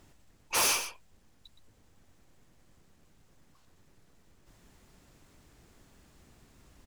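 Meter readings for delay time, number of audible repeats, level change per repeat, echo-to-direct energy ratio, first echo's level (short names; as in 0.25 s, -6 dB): 0.119 s, 1, no steady repeat, -10.5 dB, -10.5 dB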